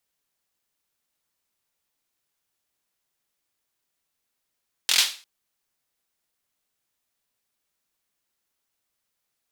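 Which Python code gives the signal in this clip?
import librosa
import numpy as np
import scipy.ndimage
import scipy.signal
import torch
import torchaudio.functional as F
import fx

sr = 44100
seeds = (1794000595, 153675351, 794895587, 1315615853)

y = fx.drum_clap(sr, seeds[0], length_s=0.35, bursts=5, spacing_ms=23, hz=3600.0, decay_s=0.36)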